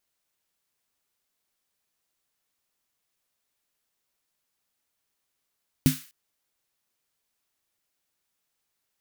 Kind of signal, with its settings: snare drum length 0.25 s, tones 150 Hz, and 260 Hz, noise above 1400 Hz, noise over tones -12 dB, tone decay 0.18 s, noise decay 0.44 s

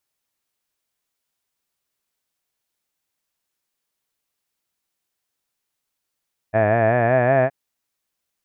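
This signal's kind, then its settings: formant-synthesis vowel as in had, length 0.97 s, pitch 105 Hz, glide +4.5 st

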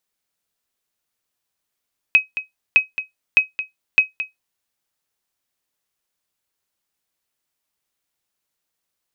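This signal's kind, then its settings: sonar ping 2540 Hz, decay 0.15 s, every 0.61 s, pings 4, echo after 0.22 s, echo -12.5 dB -3.5 dBFS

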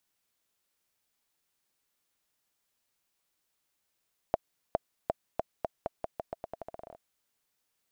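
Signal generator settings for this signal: bouncing ball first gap 0.41 s, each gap 0.85, 661 Hz, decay 24 ms -12 dBFS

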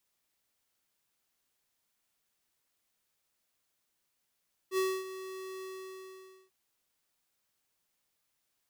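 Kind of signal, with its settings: ADSR square 378 Hz, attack 67 ms, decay 0.26 s, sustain -14 dB, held 0.92 s, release 0.875 s -28.5 dBFS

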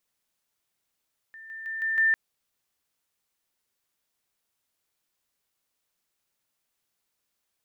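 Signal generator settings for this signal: level ladder 1790 Hz -42.5 dBFS, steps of 6 dB, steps 5, 0.16 s 0.00 s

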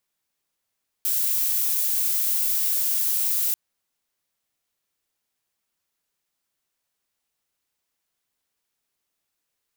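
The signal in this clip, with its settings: noise violet, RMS -23 dBFS 2.49 s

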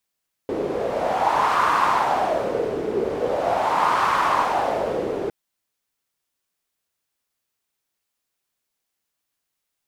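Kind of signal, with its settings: wind-like swept noise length 4.81 s, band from 410 Hz, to 1100 Hz, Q 4.2, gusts 2, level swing 6 dB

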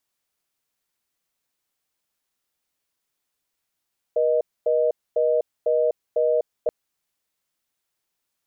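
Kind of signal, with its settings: call progress tone reorder tone, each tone -20 dBFS 2.53 s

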